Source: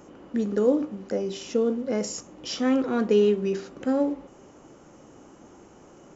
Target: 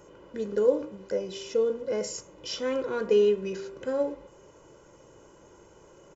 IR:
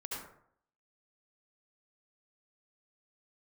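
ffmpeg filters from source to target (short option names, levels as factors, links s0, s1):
-af "aecho=1:1:2:0.68,bandreject=f=78.41:t=h:w=4,bandreject=f=156.82:t=h:w=4,bandreject=f=235.23:t=h:w=4,bandreject=f=313.64:t=h:w=4,bandreject=f=392.05:t=h:w=4,bandreject=f=470.46:t=h:w=4,bandreject=f=548.87:t=h:w=4,bandreject=f=627.28:t=h:w=4,bandreject=f=705.69:t=h:w=4,bandreject=f=784.1:t=h:w=4,bandreject=f=862.51:t=h:w=4,bandreject=f=940.92:t=h:w=4,bandreject=f=1019.33:t=h:w=4,bandreject=f=1097.74:t=h:w=4,bandreject=f=1176.15:t=h:w=4,bandreject=f=1254.56:t=h:w=4,bandreject=f=1332.97:t=h:w=4,bandreject=f=1411.38:t=h:w=4,bandreject=f=1489.79:t=h:w=4,bandreject=f=1568.2:t=h:w=4,bandreject=f=1646.61:t=h:w=4,bandreject=f=1725.02:t=h:w=4,bandreject=f=1803.43:t=h:w=4,bandreject=f=1881.84:t=h:w=4,bandreject=f=1960.25:t=h:w=4,bandreject=f=2038.66:t=h:w=4,bandreject=f=2117.07:t=h:w=4,bandreject=f=2195.48:t=h:w=4,bandreject=f=2273.89:t=h:w=4,bandreject=f=2352.3:t=h:w=4,bandreject=f=2430.71:t=h:w=4,bandreject=f=2509.12:t=h:w=4,bandreject=f=2587.53:t=h:w=4,bandreject=f=2665.94:t=h:w=4,bandreject=f=2744.35:t=h:w=4,bandreject=f=2822.76:t=h:w=4,volume=0.631"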